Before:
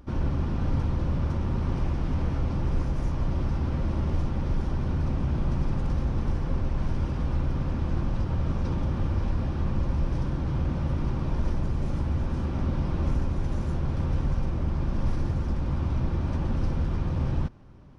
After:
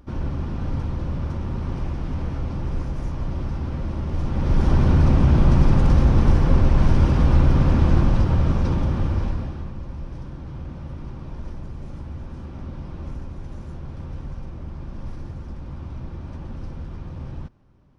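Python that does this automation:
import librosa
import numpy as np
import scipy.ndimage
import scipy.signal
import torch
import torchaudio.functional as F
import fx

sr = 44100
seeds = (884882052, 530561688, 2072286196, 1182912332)

y = fx.gain(x, sr, db=fx.line((4.09, 0.0), (4.71, 11.0), (7.86, 11.0), (9.24, 3.5), (9.74, -7.0)))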